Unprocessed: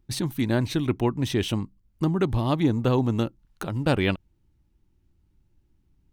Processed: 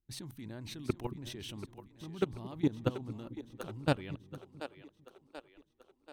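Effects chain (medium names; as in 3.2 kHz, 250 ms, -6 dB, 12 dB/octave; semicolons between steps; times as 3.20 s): level held to a coarse grid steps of 20 dB; two-band feedback delay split 310 Hz, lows 223 ms, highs 734 ms, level -11 dB; trim -4.5 dB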